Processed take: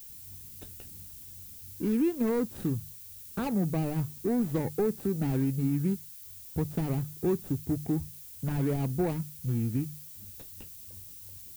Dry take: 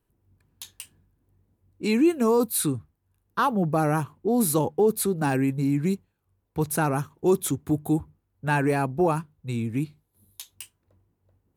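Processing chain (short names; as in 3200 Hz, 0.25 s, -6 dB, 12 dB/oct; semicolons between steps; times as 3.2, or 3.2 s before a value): median filter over 41 samples; low shelf 220 Hz +10.5 dB; compressor 2:1, threshold -40 dBFS, peak gain reduction 14.5 dB; notches 50/100/150 Hz; added noise violet -51 dBFS; gain +4 dB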